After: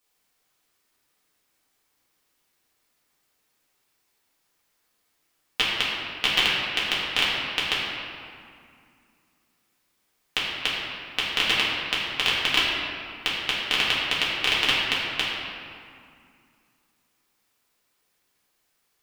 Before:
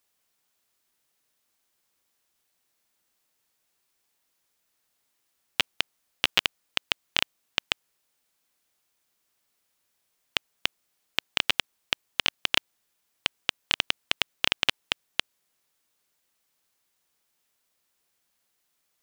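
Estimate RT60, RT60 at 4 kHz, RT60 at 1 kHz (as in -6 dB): 2.3 s, 1.4 s, 2.3 s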